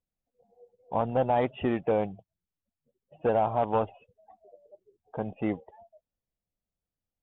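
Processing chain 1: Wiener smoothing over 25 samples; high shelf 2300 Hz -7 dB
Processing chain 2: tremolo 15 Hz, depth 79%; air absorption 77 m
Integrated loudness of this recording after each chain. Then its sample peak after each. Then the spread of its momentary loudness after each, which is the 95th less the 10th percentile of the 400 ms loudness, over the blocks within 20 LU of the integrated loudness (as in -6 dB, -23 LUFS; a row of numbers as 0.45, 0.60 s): -30.0, -33.0 LUFS; -15.5, -15.5 dBFS; 11, 11 LU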